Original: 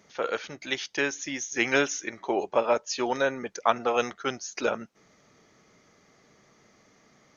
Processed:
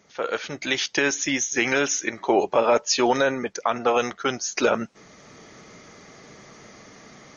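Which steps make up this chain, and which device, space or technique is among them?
low-bitrate web radio (level rider gain up to 13 dB; peak limiter -9.5 dBFS, peak gain reduction 8.5 dB; trim +1 dB; MP3 40 kbps 32 kHz)

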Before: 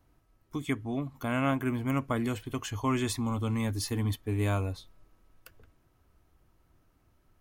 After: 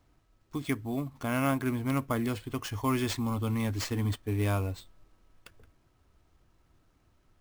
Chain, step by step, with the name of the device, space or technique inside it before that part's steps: early companding sampler (sample-rate reducer 12 kHz, jitter 0%; companded quantiser 8-bit)

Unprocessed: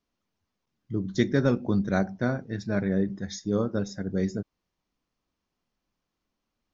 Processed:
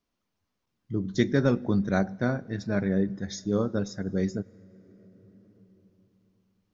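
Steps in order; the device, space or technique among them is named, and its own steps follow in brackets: compressed reverb return (on a send at -10 dB: reverberation RT60 2.8 s, pre-delay 91 ms + compression 5:1, threshold -41 dBFS, peak gain reduction 18.5 dB)

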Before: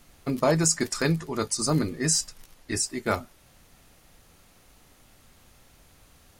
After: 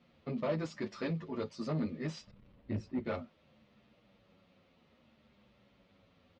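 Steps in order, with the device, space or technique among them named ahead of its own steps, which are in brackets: 2.27–3.05 s: RIAA curve playback; barber-pole flanger into a guitar amplifier (endless flanger 9.1 ms -0.63 Hz; saturation -26 dBFS, distortion -10 dB; cabinet simulation 86–3800 Hz, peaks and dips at 210 Hz +10 dB, 550 Hz +7 dB, 780 Hz -4 dB, 1.6 kHz -5 dB); trim -5.5 dB

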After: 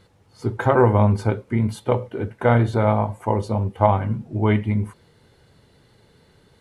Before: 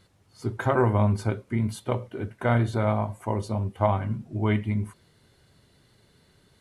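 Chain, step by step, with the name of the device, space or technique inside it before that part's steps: inside a helmet (treble shelf 4.4 kHz -6 dB; small resonant body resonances 480/850 Hz, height 7 dB); trim +5 dB

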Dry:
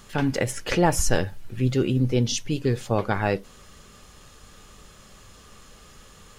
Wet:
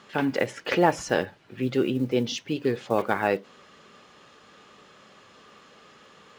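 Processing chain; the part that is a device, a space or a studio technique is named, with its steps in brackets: early digital voice recorder (band-pass 240–3600 Hz; block-companded coder 7-bit); trim +1 dB

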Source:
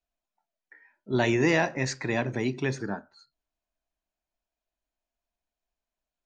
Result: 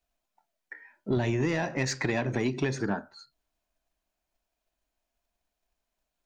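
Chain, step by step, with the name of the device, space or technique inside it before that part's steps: 1.16–1.75 s: peaking EQ 79 Hz +12.5 dB -> +6.5 dB 2.9 oct; drum-bus smash (transient shaper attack +5 dB, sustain +1 dB; compression 12:1, threshold -27 dBFS, peak gain reduction 15 dB; saturation -24 dBFS, distortion -16 dB); trim +5.5 dB

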